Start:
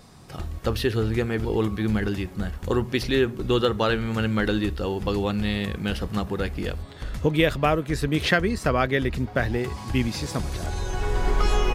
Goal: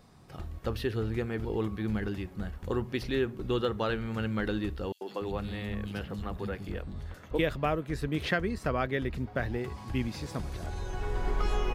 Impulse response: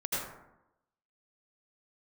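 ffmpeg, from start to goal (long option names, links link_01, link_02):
-filter_complex "[0:a]equalizer=frequency=7900:width_type=o:width=2.3:gain=-5.5,asettb=1/sr,asplit=3[link_01][link_02][link_03];[link_01]atrim=end=4.924[link_04];[link_02]atrim=start=4.92:end=7.39,asetpts=PTS-STARTPTS,afade=type=in:duration=0.004:curve=qsin,afade=type=out:start_time=2.466:duration=0.004:curve=qsin,acrossover=split=240|3400[link_05][link_06][link_07];[link_06]adelay=90[link_08];[link_05]adelay=290[link_09];[link_09][link_08][link_07]amix=inputs=3:normalize=0,atrim=end_sample=108927[link_10];[link_03]atrim=start=7.386[link_11];[link_04][link_10]acrossfade=duration=0.004:curve1=hsin:curve2=qsin[link_12];[link_12][link_11]acrossfade=duration=0.004:curve1=qsin:curve2=hsin,volume=-7.5dB"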